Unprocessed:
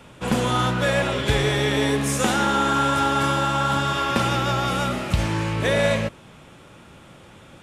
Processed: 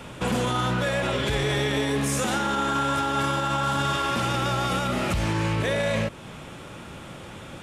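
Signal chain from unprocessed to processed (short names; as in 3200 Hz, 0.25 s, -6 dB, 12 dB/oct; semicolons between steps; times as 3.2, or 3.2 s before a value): in parallel at +0.5 dB: compressor, threshold -31 dBFS, peak gain reduction 15 dB; on the sum: limiter -16.5 dBFS, peak gain reduction 11 dB; 3.62–4.73 band noise 860–10000 Hz -46 dBFS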